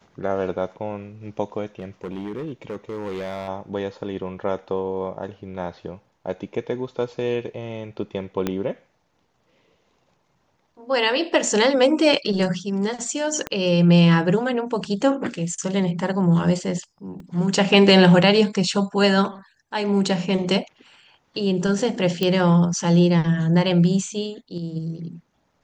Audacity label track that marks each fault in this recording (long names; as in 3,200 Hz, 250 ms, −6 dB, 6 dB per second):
1.790000	3.480000	clipping −26 dBFS
8.470000	8.470000	click −10 dBFS
13.470000	13.470000	click −12 dBFS
17.200000	17.200000	drop-out 2.2 ms
22.230000	22.230000	click −9 dBFS